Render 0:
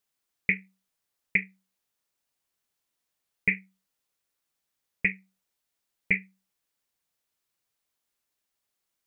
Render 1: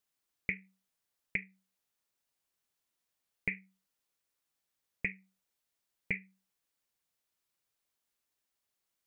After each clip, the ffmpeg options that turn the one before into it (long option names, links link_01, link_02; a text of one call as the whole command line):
ffmpeg -i in.wav -af "acompressor=threshold=-30dB:ratio=3,volume=-3dB" out.wav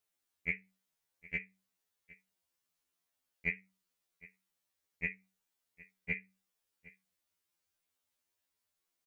ffmpeg -i in.wav -af "aecho=1:1:761:0.0891,afftfilt=real='re*2*eq(mod(b,4),0)':imag='im*2*eq(mod(b,4),0)':win_size=2048:overlap=0.75,volume=1.5dB" out.wav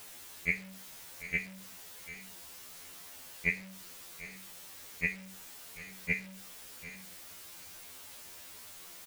ffmpeg -i in.wav -af "aeval=exprs='val(0)+0.5*0.00447*sgn(val(0))':channel_layout=same,aecho=1:1:736:0.0944,volume=4dB" out.wav